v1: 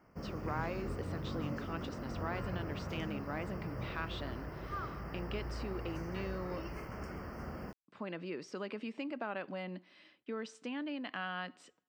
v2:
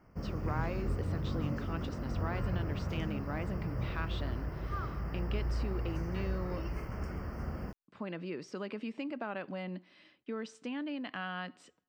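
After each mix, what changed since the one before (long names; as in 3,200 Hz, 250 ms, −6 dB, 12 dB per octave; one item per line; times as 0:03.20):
master: add low-shelf EQ 130 Hz +11 dB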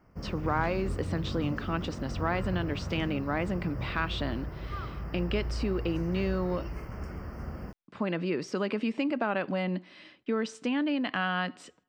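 speech +9.5 dB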